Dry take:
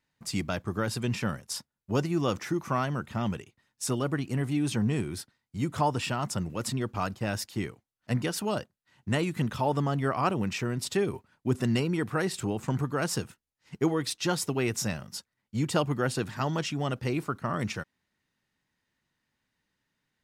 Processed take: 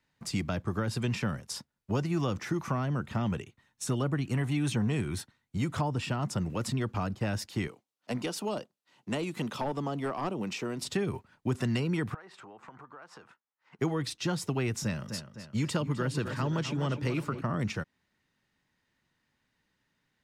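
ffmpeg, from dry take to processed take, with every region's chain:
-filter_complex "[0:a]asettb=1/sr,asplit=3[a][b][c];[a]atrim=end=3.314[d];[b]atrim=start=3.31:end=5.58,asetpts=PTS-STARTPTS,afade=t=in:d=0.004:c=qsin,afade=t=out:st=2.266:d=0.004:c=qsin,bandreject=f=4.9k:w=7.8,aphaser=in_gain=1:out_gain=1:delay=1.2:decay=0.23:speed=1.3:type=triangular[e];[c]atrim=start=5.576[f];[d][e]acrossfade=d=0.004:c1=hsin:c2=qsin[g];[g][f]acrossfade=d=0.004:c1=qsin:c2=hsin,asettb=1/sr,asplit=3[h][i][j];[h]atrim=end=7.674[k];[i]atrim=start=7.67:end=10.82,asetpts=PTS-STARTPTS,afade=t=in:d=0.004:c=qsin,afade=t=out:st=3.146:d=0.004:c=qsin,highpass=270,equalizer=f=1.7k:w=2:g=-7.5,aeval=exprs='clip(val(0),-1,0.0531)':c=same[l];[j]atrim=start=10.816[m];[k][l]acrossfade=d=0.004:c1=hsin:c2=qsin[n];[n][m]acrossfade=d=0.004:c1=qsin:c2=hsin,asettb=1/sr,asplit=3[o][p][q];[o]atrim=end=12.144[r];[p]atrim=start=12.14:end=13.79,asetpts=PTS-STARTPTS,afade=t=in:d=0.004:c=qsin,afade=t=out:st=1.646:d=0.004:c=qsin,bandpass=f=1.1k:t=q:w=1.4,acompressor=threshold=-50dB:ratio=5:attack=3.2:release=140:knee=1:detection=peak[s];[q]atrim=start=13.786[t];[r][s]acrossfade=d=0.004:c1=hsin:c2=qsin[u];[u][t]acrossfade=d=0.004:c1=qsin:c2=hsin,asettb=1/sr,asplit=3[v][w][x];[v]atrim=end=14.834[y];[w]atrim=start=14.83:end=17.41,asetpts=PTS-STARTPTS,afade=t=in:d=0.004:c=qsin,afade=t=out:st=2.576:d=0.004:c=qsin,highpass=83,bandreject=f=740:w=5.6,asplit=2[z][aa];[aa]adelay=255,lowpass=f=4.4k:p=1,volume=-11dB,asplit=2[ab][ac];[ac]adelay=255,lowpass=f=4.4k:p=1,volume=0.49,asplit=2[ad][ae];[ae]adelay=255,lowpass=f=4.4k:p=1,volume=0.49,asplit=2[af][ag];[ag]adelay=255,lowpass=f=4.4k:p=1,volume=0.49,asplit=2[ah][ai];[ai]adelay=255,lowpass=f=4.4k:p=1,volume=0.49[aj];[z][ab][ad][af][ah][aj]amix=inputs=6:normalize=0,atrim=end_sample=113778[ak];[x]atrim=start=17.406[al];[y][ak]acrossfade=d=0.004:c1=hsin:c2=qsin[am];[am][al]acrossfade=d=0.004:c1=qsin:c2=hsin,highshelf=f=9.1k:g=-8.5,acrossover=split=210|520[an][ao][ap];[an]acompressor=threshold=-33dB:ratio=4[aq];[ao]acompressor=threshold=-41dB:ratio=4[ar];[ap]acompressor=threshold=-39dB:ratio=4[as];[aq][ar][as]amix=inputs=3:normalize=0,volume=3.5dB"

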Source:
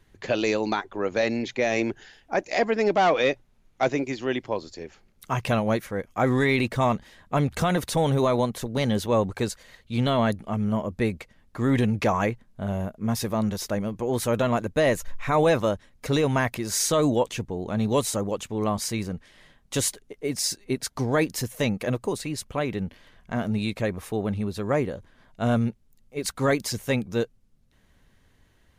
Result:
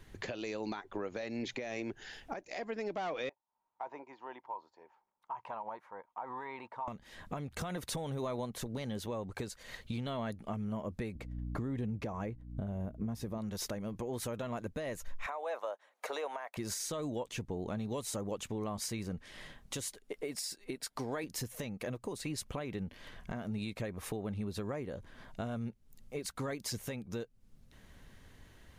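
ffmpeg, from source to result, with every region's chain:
-filter_complex "[0:a]asettb=1/sr,asplit=3[a][b][c];[a]atrim=end=3.294[d];[b]atrim=start=3.29:end=6.88,asetpts=PTS-STARTPTS,afade=t=in:d=0.004:c=qsin,afade=t=out:st=3.586:d=0.004:c=qsin,bandpass=f=930:t=q:w=11,acompressor=threshold=-42dB:ratio=3:attack=3.2:release=140:knee=1:detection=peak[e];[c]atrim=start=6.876[f];[d][e]acrossfade=d=0.004:c1=hsin:c2=qsin[g];[g][f]acrossfade=d=0.004:c1=qsin:c2=hsin,asettb=1/sr,asplit=3[h][i][j];[h]atrim=end=11.154[k];[i]atrim=start=11.15:end=13.38,asetpts=PTS-STARTPTS,afade=t=in:d=0.004:c=qsin,afade=t=out:st=2.226:d=0.004:c=qsin,agate=range=-33dB:threshold=-49dB:ratio=3:release=100:detection=peak,tiltshelf=f=800:g=5.5,aeval=exprs='val(0)+0.00891*(sin(2*PI*60*n/s)+sin(2*PI*2*60*n/s)/2+sin(2*PI*3*60*n/s)/3+sin(2*PI*4*60*n/s)/4+sin(2*PI*5*60*n/s)/5)':c=same[l];[j]atrim=start=13.376[m];[k][l]acrossfade=d=0.004:c1=hsin:c2=qsin[n];[n][m]acrossfade=d=0.004:c1=qsin:c2=hsin,asettb=1/sr,asplit=3[o][p][q];[o]atrim=end=15.264[r];[p]atrim=start=15.26:end=16.57,asetpts=PTS-STARTPTS,afade=t=in:d=0.004:c=qsin,afade=t=out:st=1.306:d=0.004:c=qsin,highpass=f=670:w=0.5412,highpass=f=670:w=1.3066,tiltshelf=f=1.2k:g=9.5,bandreject=f=5.1k:w=13[s];[q]atrim=start=16.566[t];[r][s]acrossfade=d=0.004:c1=hsin:c2=qsin[u];[u][t]acrossfade=d=0.004:c1=qsin:c2=hsin,asettb=1/sr,asplit=3[v][w][x];[v]atrim=end=19.984[y];[w]atrim=start=19.98:end=21.24,asetpts=PTS-STARTPTS,afade=t=in:d=0.004:c=qsin,afade=t=out:st=1.256:d=0.004:c=qsin,equalizer=f=69:w=0.45:g=-13.5,bandreject=f=6.2k:w=10[z];[x]atrim=start=21.236[aa];[y][z]acrossfade=d=0.004:c1=hsin:c2=qsin[ab];[ab][aa]acrossfade=d=0.004:c1=qsin:c2=hsin,acompressor=threshold=-37dB:ratio=12,alimiter=level_in=7.5dB:limit=-24dB:level=0:latency=1:release=256,volume=-7.5dB,volume=4dB"

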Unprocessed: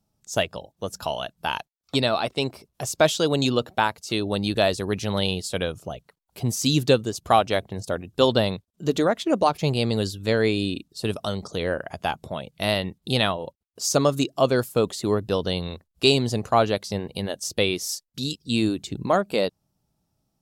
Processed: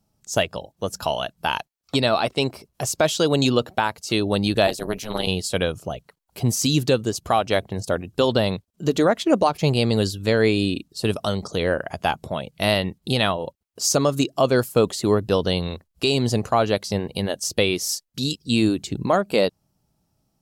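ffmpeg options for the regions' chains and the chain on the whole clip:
-filter_complex "[0:a]asettb=1/sr,asplit=3[a][b][c];[a]atrim=end=4.674[d];[b]atrim=start=4.67:end=5.27,asetpts=PTS-STARTPTS,afade=t=in:d=0.004:c=qsin,afade=t=out:st=0.596:d=0.004:c=qsin,highpass=180,equalizer=f=14k:w=1.5:g=15,tremolo=f=220:d=0.947[e];[c]atrim=start=5.266[f];[d][e]acrossfade=d=0.004:c1=hsin:c2=qsin[g];[g][f]acrossfade=d=0.004:c1=qsin:c2=hsin,bandreject=f=3.6k:w=22,alimiter=limit=-11.5dB:level=0:latency=1:release=175,volume=4dB"

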